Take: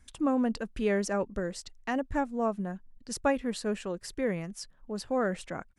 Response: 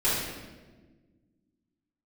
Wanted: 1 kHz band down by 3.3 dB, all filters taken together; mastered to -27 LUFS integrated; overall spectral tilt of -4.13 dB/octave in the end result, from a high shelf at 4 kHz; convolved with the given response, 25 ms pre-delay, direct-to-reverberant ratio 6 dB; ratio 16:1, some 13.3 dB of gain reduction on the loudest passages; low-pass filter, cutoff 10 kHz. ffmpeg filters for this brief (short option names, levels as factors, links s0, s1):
-filter_complex "[0:a]lowpass=10000,equalizer=f=1000:t=o:g=-5,highshelf=f=4000:g=6,acompressor=threshold=0.0141:ratio=16,asplit=2[s0][s1];[1:a]atrim=start_sample=2205,adelay=25[s2];[s1][s2]afir=irnorm=-1:irlink=0,volume=0.119[s3];[s0][s3]amix=inputs=2:normalize=0,volume=5.01"